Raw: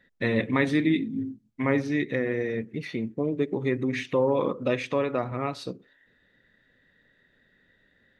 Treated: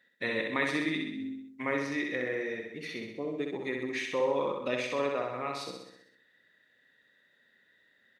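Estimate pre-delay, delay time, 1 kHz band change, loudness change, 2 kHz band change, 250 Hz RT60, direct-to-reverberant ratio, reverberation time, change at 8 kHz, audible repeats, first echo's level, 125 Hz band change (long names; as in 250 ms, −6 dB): no reverb audible, 64 ms, −3.0 dB, −5.5 dB, −1.5 dB, no reverb audible, no reverb audible, no reverb audible, can't be measured, 7, −4.0 dB, −14.5 dB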